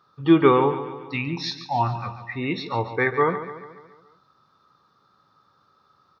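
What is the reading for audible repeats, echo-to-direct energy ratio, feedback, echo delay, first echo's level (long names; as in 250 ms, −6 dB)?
5, −10.5 dB, 53%, 142 ms, −12.0 dB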